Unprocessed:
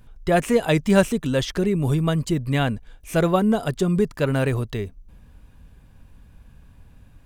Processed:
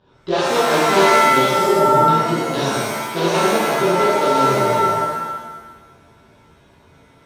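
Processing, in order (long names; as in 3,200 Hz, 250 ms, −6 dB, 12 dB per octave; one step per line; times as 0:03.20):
in parallel at +1.5 dB: downward compressor 8 to 1, threshold −31 dBFS, peak gain reduction 19.5 dB
on the sum: wrap-around overflow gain 8.5 dB
loudspeaker in its box 130–4,500 Hz, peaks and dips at 200 Hz −5 dB, 380 Hz +9 dB, 590 Hz +4 dB, 960 Hz +7 dB, 2,100 Hz −9 dB, 3,700 Hz +5 dB
reverb with rising layers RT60 1.2 s, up +7 semitones, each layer −2 dB, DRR −8.5 dB
level −11.5 dB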